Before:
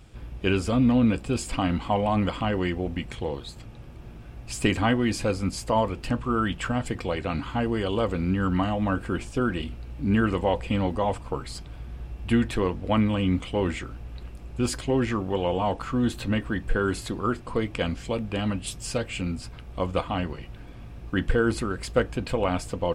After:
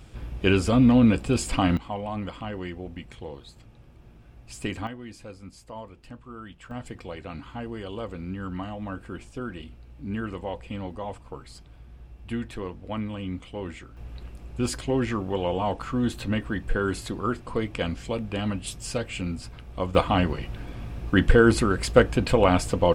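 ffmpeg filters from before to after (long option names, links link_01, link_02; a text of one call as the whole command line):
ffmpeg -i in.wav -af "asetnsamples=nb_out_samples=441:pad=0,asendcmd='1.77 volume volume -8dB;4.87 volume volume -16.5dB;6.71 volume volume -9dB;13.97 volume volume -1dB;19.95 volume volume 6dB',volume=3dB" out.wav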